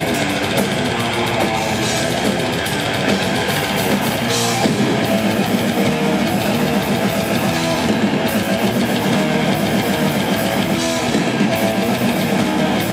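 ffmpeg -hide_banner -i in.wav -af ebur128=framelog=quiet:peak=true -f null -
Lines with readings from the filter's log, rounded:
Integrated loudness:
  I:         -17.0 LUFS
  Threshold: -27.0 LUFS
Loudness range:
  LRA:         0.9 LU
  Threshold: -37.0 LUFS
  LRA low:   -17.5 LUFS
  LRA high:  -16.6 LUFS
True peak:
  Peak:       -1.9 dBFS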